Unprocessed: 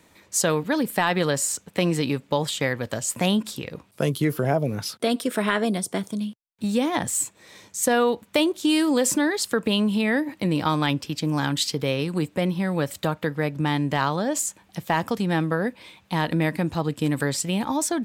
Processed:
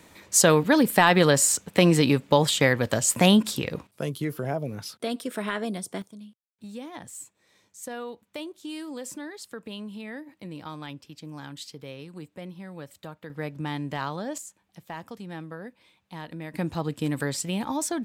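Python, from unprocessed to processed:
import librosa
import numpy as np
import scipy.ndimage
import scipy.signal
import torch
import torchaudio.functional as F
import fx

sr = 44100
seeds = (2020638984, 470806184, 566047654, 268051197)

y = fx.gain(x, sr, db=fx.steps((0.0, 4.0), (3.87, -7.0), (6.02, -16.0), (13.3, -8.0), (14.38, -15.0), (16.54, -4.0)))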